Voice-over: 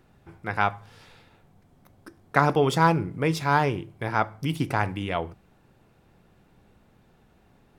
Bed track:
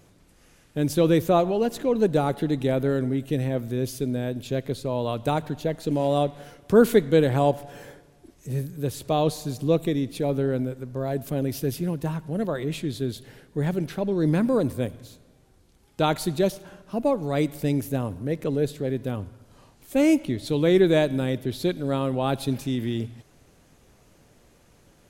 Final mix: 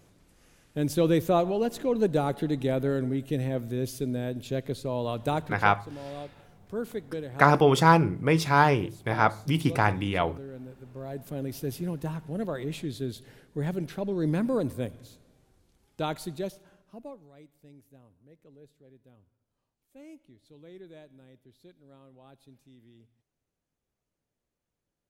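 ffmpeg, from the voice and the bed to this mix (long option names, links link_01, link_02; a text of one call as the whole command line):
ffmpeg -i stem1.wav -i stem2.wav -filter_complex "[0:a]adelay=5050,volume=1.5dB[link_01];[1:a]volume=8.5dB,afade=type=out:start_time=5.38:duration=0.42:silence=0.211349,afade=type=in:start_time=10.54:duration=1.34:silence=0.251189,afade=type=out:start_time=15.39:duration=1.93:silence=0.0595662[link_02];[link_01][link_02]amix=inputs=2:normalize=0" out.wav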